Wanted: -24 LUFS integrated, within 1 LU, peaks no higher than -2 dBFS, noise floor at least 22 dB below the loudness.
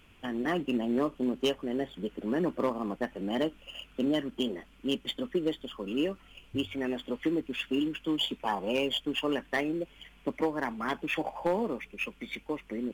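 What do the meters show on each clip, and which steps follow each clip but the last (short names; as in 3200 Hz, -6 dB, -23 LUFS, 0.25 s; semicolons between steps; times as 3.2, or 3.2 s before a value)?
clipped 0.3%; flat tops at -20.0 dBFS; loudness -32.5 LUFS; peak -20.0 dBFS; loudness target -24.0 LUFS
-> clip repair -20 dBFS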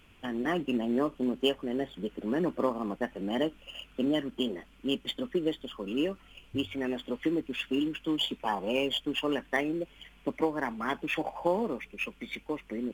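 clipped 0.0%; loudness -32.0 LUFS; peak -13.0 dBFS; loudness target -24.0 LUFS
-> gain +8 dB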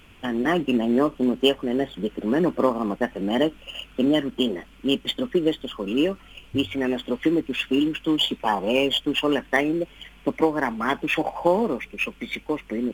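loudness -24.0 LUFS; peak -5.0 dBFS; noise floor -50 dBFS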